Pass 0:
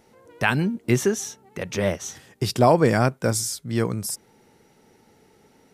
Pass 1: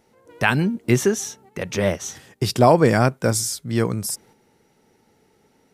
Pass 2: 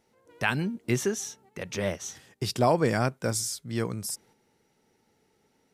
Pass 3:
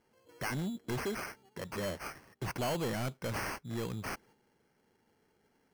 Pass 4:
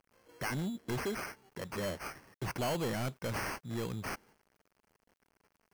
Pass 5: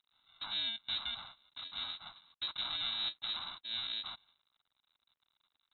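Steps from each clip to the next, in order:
gate -51 dBFS, range -6 dB; trim +2.5 dB
peaking EQ 4.8 kHz +3 dB 2.8 oct; trim -9 dB
sample-and-hold 12×; saturation -27 dBFS, distortion -6 dB; trim -3.5 dB
bit crusher 11-bit
bit-reversed sample order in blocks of 64 samples; frequency inversion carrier 3.9 kHz

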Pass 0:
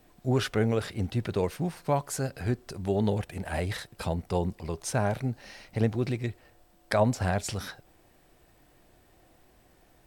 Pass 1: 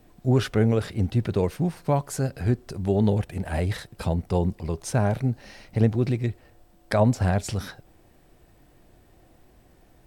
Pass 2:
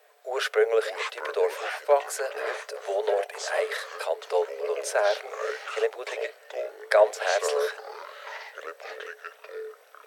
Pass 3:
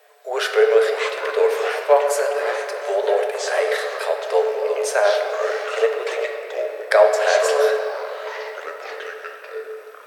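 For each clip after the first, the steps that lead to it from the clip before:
bass shelf 440 Hz +7 dB
ever faster or slower copies 418 ms, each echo -6 st, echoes 3; rippled Chebyshev high-pass 420 Hz, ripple 6 dB; trim +6.5 dB
simulated room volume 190 m³, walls hard, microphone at 0.33 m; trim +5 dB

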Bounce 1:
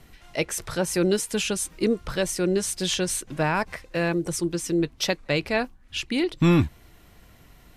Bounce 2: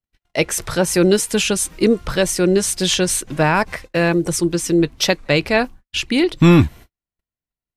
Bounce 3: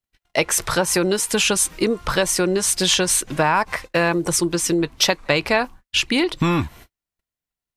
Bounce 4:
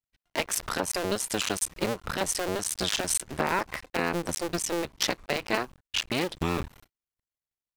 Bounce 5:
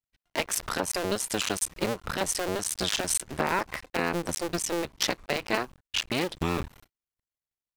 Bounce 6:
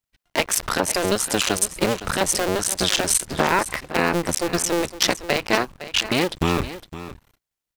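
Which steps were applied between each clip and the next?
gate -43 dBFS, range -50 dB; trim +8 dB
dynamic bell 1 kHz, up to +7 dB, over -36 dBFS, Q 1.8; compression 6:1, threshold -16 dBFS, peak gain reduction 10 dB; bass shelf 490 Hz -5.5 dB; trim +3.5 dB
cycle switcher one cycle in 2, muted; trim -6.5 dB
no audible change
delay 511 ms -14 dB; trim +7.5 dB

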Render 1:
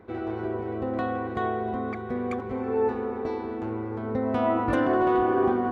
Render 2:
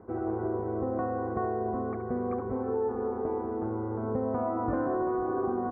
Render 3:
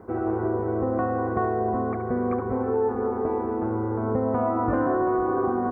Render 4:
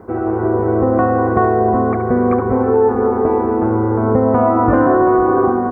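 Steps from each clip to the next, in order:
low-pass 1.3 kHz 24 dB/octave; compression, threshold -26 dBFS, peak gain reduction 7.5 dB; delay 71 ms -11 dB
treble shelf 2 kHz +9 dB; on a send at -15 dB: reverberation RT60 2.6 s, pre-delay 27 ms; on the sum: trim +5 dB
level rider gain up to 4 dB; trim +7 dB

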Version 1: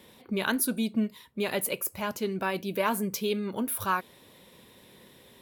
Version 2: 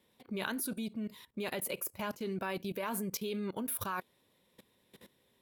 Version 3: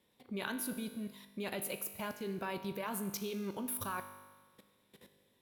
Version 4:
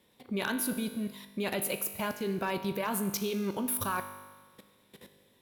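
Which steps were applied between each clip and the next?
level held to a coarse grid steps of 18 dB
feedback comb 50 Hz, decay 1.4 s, harmonics all, mix 70%; trim +6 dB
overload inside the chain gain 29.5 dB; trim +7 dB

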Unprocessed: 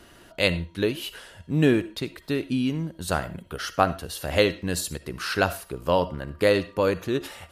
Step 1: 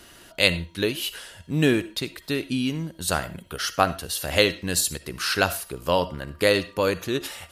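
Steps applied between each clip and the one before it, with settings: treble shelf 2.2 kHz +9 dB; trim -1 dB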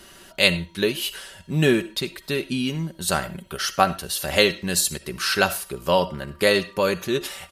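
comb 5.2 ms, depth 47%; trim +1 dB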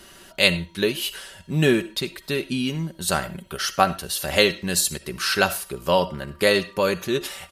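no audible change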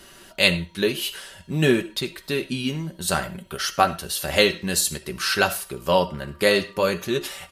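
flange 0.54 Hz, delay 6.7 ms, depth 8.8 ms, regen -64%; trim +4 dB

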